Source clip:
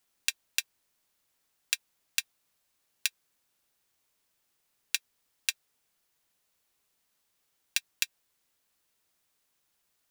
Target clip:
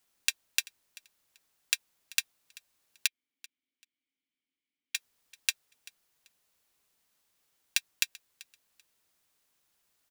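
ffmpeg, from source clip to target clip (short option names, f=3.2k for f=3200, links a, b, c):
-filter_complex "[0:a]asettb=1/sr,asplit=3[a][b][c];[a]atrim=end=3.074[d];[b]atrim=start=3.07:end=4.95,asetpts=PTS-STARTPTS,afade=t=in:d=0.004:c=qsin,afade=t=out:st=1.876:d=0.004:c=qsin,asplit=3[e][f][g];[e]bandpass=f=270:t=q:w=8,volume=0dB[h];[f]bandpass=f=2.29k:t=q:w=8,volume=-6dB[i];[g]bandpass=f=3.01k:t=q:w=8,volume=-9dB[j];[h][i][j]amix=inputs=3:normalize=0[k];[c]atrim=start=4.946[l];[d][k]acrossfade=d=0.004:c1=hsin:c2=qsin[m];[m][l]acrossfade=d=0.004:c1=qsin:c2=hsin,aecho=1:1:387|774:0.0794|0.0167,volume=1dB"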